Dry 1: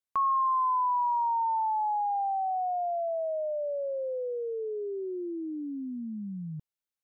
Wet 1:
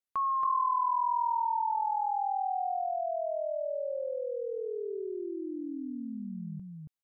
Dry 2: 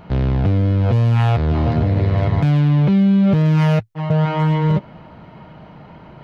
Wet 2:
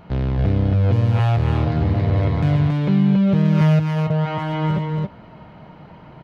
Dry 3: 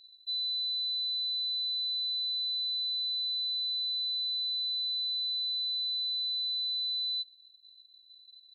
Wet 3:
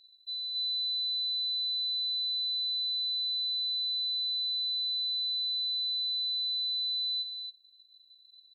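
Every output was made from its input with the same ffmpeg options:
-af "aecho=1:1:277:0.668,volume=-3.5dB"

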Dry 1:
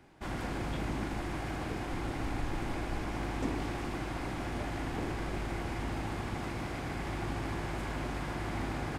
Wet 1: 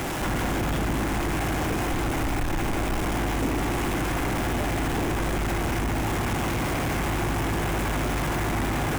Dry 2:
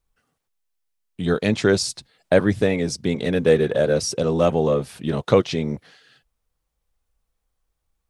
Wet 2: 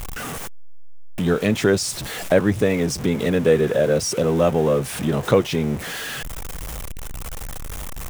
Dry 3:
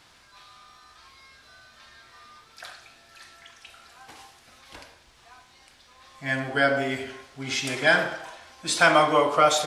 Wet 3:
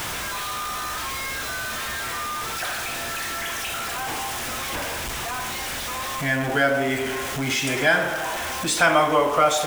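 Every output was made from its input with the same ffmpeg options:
-filter_complex "[0:a]aeval=exprs='val(0)+0.5*0.0376*sgn(val(0))':c=same,equalizer=f=4.4k:t=o:w=0.55:g=-6,asplit=2[a][b];[b]acompressor=threshold=-29dB:ratio=6,volume=3dB[c];[a][c]amix=inputs=2:normalize=0,volume=-2.5dB"

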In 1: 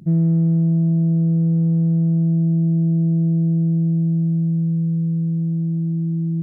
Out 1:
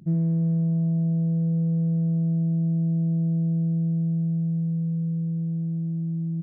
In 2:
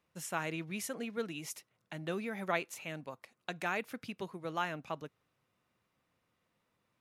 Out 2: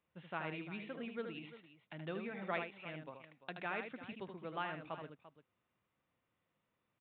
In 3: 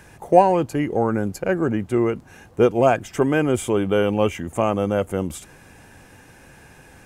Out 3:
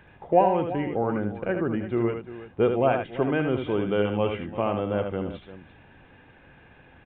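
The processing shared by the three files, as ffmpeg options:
-af "aresample=8000,aresample=44100,aecho=1:1:77|344:0.473|0.188,volume=-6dB"

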